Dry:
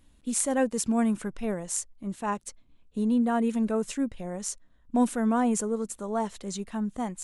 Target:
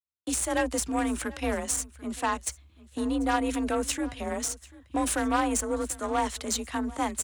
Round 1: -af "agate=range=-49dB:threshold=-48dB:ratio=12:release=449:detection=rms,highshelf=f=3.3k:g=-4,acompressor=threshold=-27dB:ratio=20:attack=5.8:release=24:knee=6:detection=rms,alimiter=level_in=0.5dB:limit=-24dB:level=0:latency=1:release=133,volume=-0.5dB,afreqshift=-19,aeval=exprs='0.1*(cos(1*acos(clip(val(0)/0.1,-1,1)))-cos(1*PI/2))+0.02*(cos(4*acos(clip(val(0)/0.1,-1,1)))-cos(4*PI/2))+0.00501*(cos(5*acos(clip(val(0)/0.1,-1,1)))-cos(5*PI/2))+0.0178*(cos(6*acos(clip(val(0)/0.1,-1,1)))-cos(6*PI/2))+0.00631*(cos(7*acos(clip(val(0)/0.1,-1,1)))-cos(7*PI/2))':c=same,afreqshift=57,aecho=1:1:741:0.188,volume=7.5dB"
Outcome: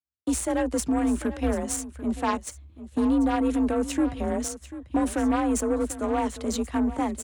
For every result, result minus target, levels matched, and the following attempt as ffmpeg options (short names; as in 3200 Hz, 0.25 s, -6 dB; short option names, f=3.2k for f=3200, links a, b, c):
echo-to-direct +6.5 dB; 1000 Hz band -3.0 dB
-af "agate=range=-49dB:threshold=-48dB:ratio=12:release=449:detection=rms,highshelf=f=3.3k:g=-4,acompressor=threshold=-27dB:ratio=20:attack=5.8:release=24:knee=6:detection=rms,alimiter=level_in=0.5dB:limit=-24dB:level=0:latency=1:release=133,volume=-0.5dB,afreqshift=-19,aeval=exprs='0.1*(cos(1*acos(clip(val(0)/0.1,-1,1)))-cos(1*PI/2))+0.02*(cos(4*acos(clip(val(0)/0.1,-1,1)))-cos(4*PI/2))+0.00501*(cos(5*acos(clip(val(0)/0.1,-1,1)))-cos(5*PI/2))+0.0178*(cos(6*acos(clip(val(0)/0.1,-1,1)))-cos(6*PI/2))+0.00631*(cos(7*acos(clip(val(0)/0.1,-1,1)))-cos(7*PI/2))':c=same,afreqshift=57,aecho=1:1:741:0.0891,volume=7.5dB"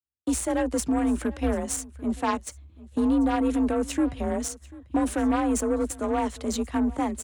1000 Hz band -3.0 dB
-af "agate=range=-49dB:threshold=-48dB:ratio=12:release=449:detection=rms,highshelf=f=3.3k:g=-4,acompressor=threshold=-27dB:ratio=20:attack=5.8:release=24:knee=6:detection=rms,tiltshelf=f=820:g=-7,alimiter=level_in=0.5dB:limit=-24dB:level=0:latency=1:release=133,volume=-0.5dB,afreqshift=-19,aeval=exprs='0.1*(cos(1*acos(clip(val(0)/0.1,-1,1)))-cos(1*PI/2))+0.02*(cos(4*acos(clip(val(0)/0.1,-1,1)))-cos(4*PI/2))+0.00501*(cos(5*acos(clip(val(0)/0.1,-1,1)))-cos(5*PI/2))+0.0178*(cos(6*acos(clip(val(0)/0.1,-1,1)))-cos(6*PI/2))+0.00631*(cos(7*acos(clip(val(0)/0.1,-1,1)))-cos(7*PI/2))':c=same,afreqshift=57,aecho=1:1:741:0.0891,volume=7.5dB"